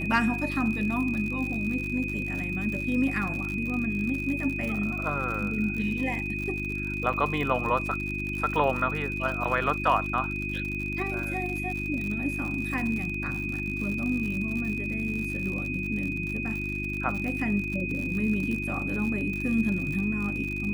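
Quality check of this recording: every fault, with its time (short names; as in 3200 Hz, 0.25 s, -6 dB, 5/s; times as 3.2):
crackle 79/s -32 dBFS
hum 50 Hz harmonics 7 -34 dBFS
tone 2500 Hz -32 dBFS
7.13–7.14 gap 5.7 ms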